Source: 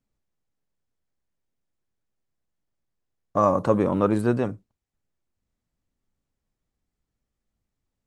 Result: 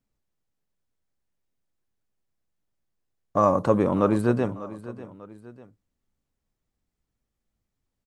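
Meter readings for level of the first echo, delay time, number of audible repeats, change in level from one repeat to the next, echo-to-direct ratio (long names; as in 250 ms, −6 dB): −16.5 dB, 595 ms, 2, −6.5 dB, −15.5 dB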